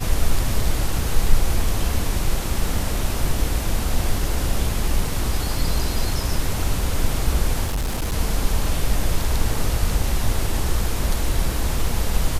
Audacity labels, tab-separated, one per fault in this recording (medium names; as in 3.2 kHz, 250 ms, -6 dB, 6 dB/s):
7.640000	8.140000	clipped -19.5 dBFS